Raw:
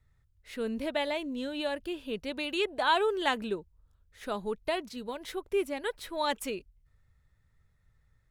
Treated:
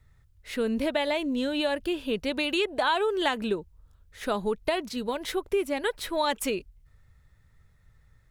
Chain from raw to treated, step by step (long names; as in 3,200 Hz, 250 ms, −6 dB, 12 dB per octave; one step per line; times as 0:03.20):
downward compressor 4 to 1, threshold −31 dBFS, peak gain reduction 9 dB
level +8 dB